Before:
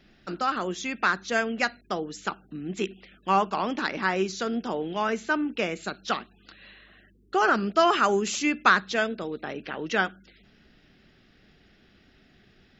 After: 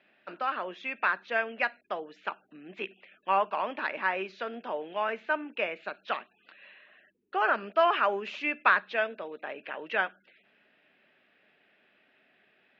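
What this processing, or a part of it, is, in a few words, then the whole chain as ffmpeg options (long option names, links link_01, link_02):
phone earpiece: -af "highpass=340,equalizer=frequency=340:width_type=q:width=4:gain=-3,equalizer=frequency=600:width_type=q:width=4:gain=8,equalizer=frequency=970:width_type=q:width=4:gain=6,equalizer=frequency=1700:width_type=q:width=4:gain=5,equalizer=frequency=2500:width_type=q:width=4:gain=8,lowpass=frequency=3400:width=0.5412,lowpass=frequency=3400:width=1.3066,volume=-7dB"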